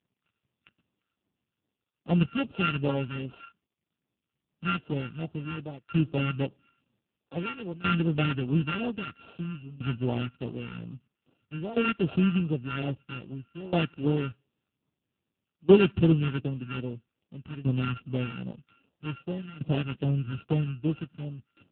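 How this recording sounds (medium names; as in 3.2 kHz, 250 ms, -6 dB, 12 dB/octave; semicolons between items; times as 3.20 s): a buzz of ramps at a fixed pitch in blocks of 32 samples; phasing stages 2, 2.5 Hz, lowest notch 610–1600 Hz; tremolo saw down 0.51 Hz, depth 90%; AMR-NB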